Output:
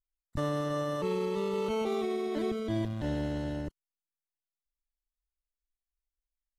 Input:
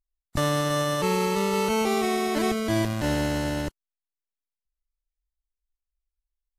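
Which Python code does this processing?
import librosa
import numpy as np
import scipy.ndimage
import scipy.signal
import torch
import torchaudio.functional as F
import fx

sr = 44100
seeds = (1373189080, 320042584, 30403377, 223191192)

y = fx.envelope_sharpen(x, sr, power=1.5)
y = fx.peak_eq(y, sr, hz=3500.0, db=10.5, octaves=0.26, at=(1.05, 3.57))
y = F.gain(torch.from_numpy(y), -7.0).numpy()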